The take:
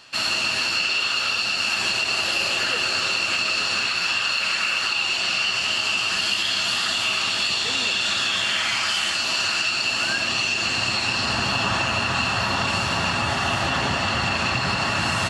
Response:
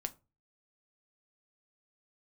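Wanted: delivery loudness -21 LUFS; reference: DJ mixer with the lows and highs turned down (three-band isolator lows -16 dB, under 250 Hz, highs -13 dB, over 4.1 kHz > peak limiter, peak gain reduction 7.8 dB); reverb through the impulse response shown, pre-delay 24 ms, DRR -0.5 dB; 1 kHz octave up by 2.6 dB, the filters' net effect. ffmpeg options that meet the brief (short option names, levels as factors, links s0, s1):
-filter_complex "[0:a]equalizer=f=1000:t=o:g=3.5,asplit=2[s0][s1];[1:a]atrim=start_sample=2205,adelay=24[s2];[s1][s2]afir=irnorm=-1:irlink=0,volume=1.19[s3];[s0][s3]amix=inputs=2:normalize=0,acrossover=split=250 4100:gain=0.158 1 0.224[s4][s5][s6];[s4][s5][s6]amix=inputs=3:normalize=0,volume=1.06,alimiter=limit=0.2:level=0:latency=1"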